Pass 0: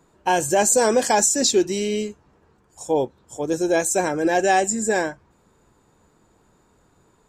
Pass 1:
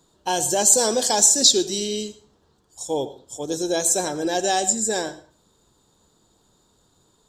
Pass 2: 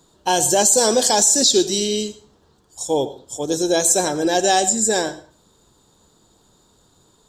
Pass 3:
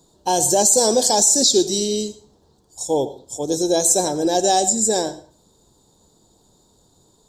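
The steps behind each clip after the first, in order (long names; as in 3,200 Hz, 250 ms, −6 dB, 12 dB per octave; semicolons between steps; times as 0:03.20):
high shelf with overshoot 2,900 Hz +7 dB, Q 3; convolution reverb RT60 0.40 s, pre-delay 73 ms, DRR 14.5 dB; level −4 dB
boost into a limiter +9 dB; level −4 dB
flat-topped bell 1,900 Hz −9.5 dB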